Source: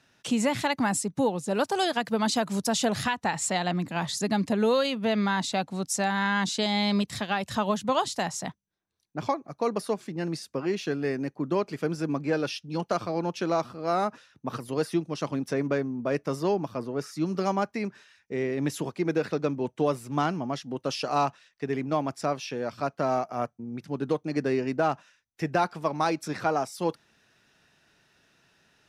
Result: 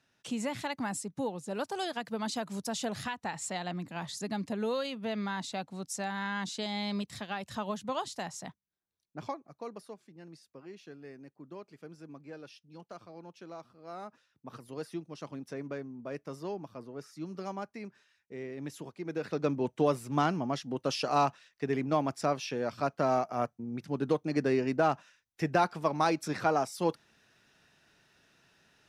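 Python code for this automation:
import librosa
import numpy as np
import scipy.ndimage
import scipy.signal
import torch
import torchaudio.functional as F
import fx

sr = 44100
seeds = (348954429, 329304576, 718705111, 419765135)

y = fx.gain(x, sr, db=fx.line((9.21, -9.0), (10.04, -19.5), (13.69, -19.5), (14.65, -12.0), (19.04, -12.0), (19.49, -1.5)))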